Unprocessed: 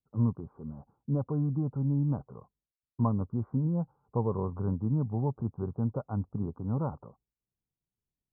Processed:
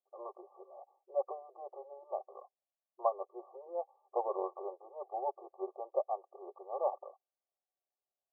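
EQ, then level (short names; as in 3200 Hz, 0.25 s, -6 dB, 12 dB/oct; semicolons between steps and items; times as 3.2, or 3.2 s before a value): brick-wall FIR band-pass 370–1200 Hz; tilt +2 dB/oct; fixed phaser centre 660 Hz, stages 8; +10.5 dB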